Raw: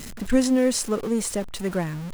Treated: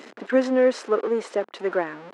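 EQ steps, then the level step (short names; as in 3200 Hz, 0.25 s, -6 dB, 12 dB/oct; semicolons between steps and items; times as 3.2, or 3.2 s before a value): HPF 340 Hz 24 dB/oct; dynamic EQ 1500 Hz, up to +5 dB, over -44 dBFS, Q 1.9; tape spacing loss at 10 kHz 33 dB; +6.5 dB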